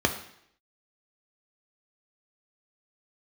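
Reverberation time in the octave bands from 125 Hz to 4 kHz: 0.65, 0.70, 0.70, 0.70, 0.70, 0.70 seconds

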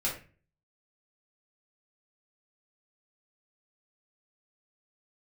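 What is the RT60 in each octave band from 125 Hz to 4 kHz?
0.60, 0.50, 0.40, 0.30, 0.40, 0.30 seconds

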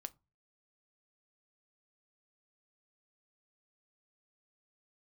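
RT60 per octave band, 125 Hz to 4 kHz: 0.45, 0.40, 0.25, 0.30, 0.20, 0.15 seconds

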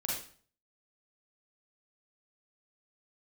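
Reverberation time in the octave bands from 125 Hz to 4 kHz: 0.60, 0.55, 0.45, 0.45, 0.45, 0.40 seconds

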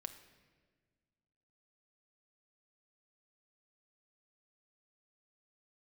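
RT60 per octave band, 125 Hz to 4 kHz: 2.3, 2.2, 1.7, 1.3, 1.4, 1.1 seconds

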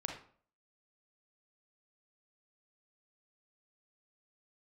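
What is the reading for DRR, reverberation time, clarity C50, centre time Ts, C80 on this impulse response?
1.5 dB, 0.50 s, 4.5 dB, 28 ms, 10.0 dB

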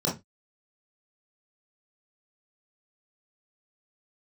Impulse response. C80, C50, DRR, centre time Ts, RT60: 19.5 dB, 8.5 dB, −6.0 dB, 29 ms, 0.20 s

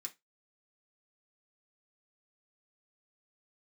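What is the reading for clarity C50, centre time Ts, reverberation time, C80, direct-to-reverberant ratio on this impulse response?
19.5 dB, 7 ms, 0.20 s, 29.5 dB, −0.5 dB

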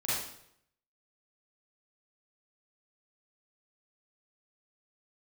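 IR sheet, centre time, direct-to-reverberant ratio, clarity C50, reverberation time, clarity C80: 76 ms, −10.5 dB, −3.0 dB, 0.70 s, 2.5 dB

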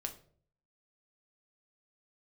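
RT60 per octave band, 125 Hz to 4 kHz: 0.75, 0.65, 0.60, 0.45, 0.35, 0.35 seconds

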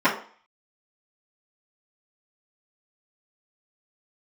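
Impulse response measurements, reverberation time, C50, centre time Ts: 0.45 s, 9.0 dB, 22 ms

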